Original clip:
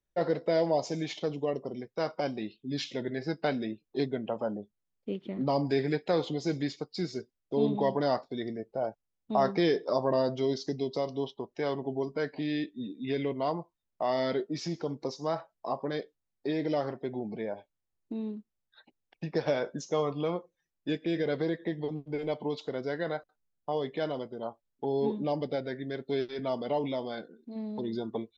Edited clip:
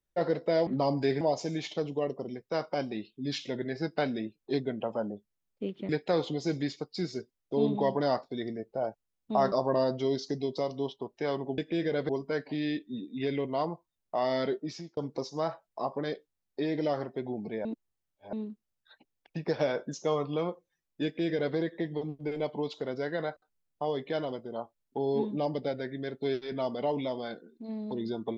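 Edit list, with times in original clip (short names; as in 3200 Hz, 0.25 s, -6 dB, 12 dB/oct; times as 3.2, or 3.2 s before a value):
5.35–5.89 move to 0.67
9.52–9.9 cut
14.45–14.84 fade out
17.52–18.2 reverse
20.92–21.43 copy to 11.96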